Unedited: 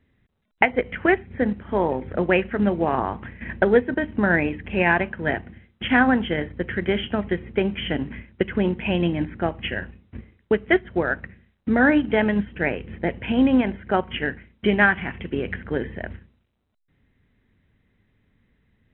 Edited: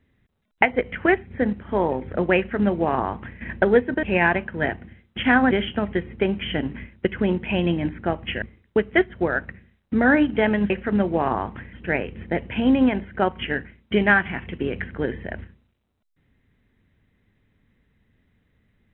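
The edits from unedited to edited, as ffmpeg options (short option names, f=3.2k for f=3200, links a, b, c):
-filter_complex "[0:a]asplit=6[a][b][c][d][e][f];[a]atrim=end=4.032[g];[b]atrim=start=4.678:end=6.162[h];[c]atrim=start=6.868:end=9.782[i];[d]atrim=start=10.168:end=12.452[j];[e]atrim=start=2.368:end=3.402[k];[f]atrim=start=12.448[l];[g][h]acrossfade=d=0.004:c1=hsin:c2=hsin[m];[m][i]acrossfade=d=0.004:c1=hsin:c2=hsin[n];[n][j]acrossfade=d=0.004:c1=hsin:c2=hsin[o];[o][k]acrossfade=d=0.004:c1=hsin:c2=hsin[p];[p][l]acrossfade=d=0.004:c1=hsin:c2=hsin"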